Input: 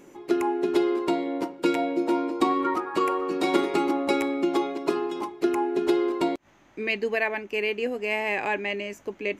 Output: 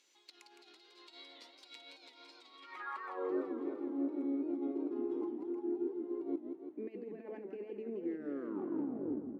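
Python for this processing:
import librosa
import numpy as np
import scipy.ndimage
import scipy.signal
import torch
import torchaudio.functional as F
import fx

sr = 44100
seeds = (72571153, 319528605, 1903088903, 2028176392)

y = fx.tape_stop_end(x, sr, length_s=1.65)
y = scipy.signal.sosfilt(scipy.signal.butter(2, 170.0, 'highpass', fs=sr, output='sos'), y)
y = fx.high_shelf(y, sr, hz=4700.0, db=6.5)
y = fx.over_compress(y, sr, threshold_db=-28.0, ratio=-0.5)
y = 10.0 ** (-17.5 / 20.0) * np.tanh(y / 10.0 ** (-17.5 / 20.0))
y = fx.filter_sweep_bandpass(y, sr, from_hz=4100.0, to_hz=300.0, start_s=2.54, end_s=3.42, q=3.5)
y = fx.echo_warbled(y, sr, ms=167, feedback_pct=63, rate_hz=2.8, cents=203, wet_db=-7.0)
y = y * librosa.db_to_amplitude(-4.5)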